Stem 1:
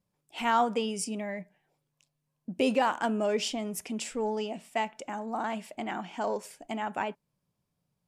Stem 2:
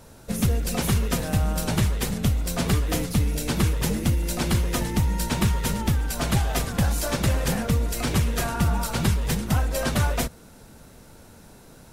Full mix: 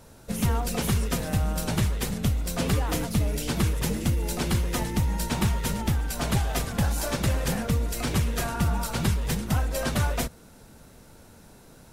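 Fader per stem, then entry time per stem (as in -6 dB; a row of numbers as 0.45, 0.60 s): -10.0, -2.5 dB; 0.00, 0.00 s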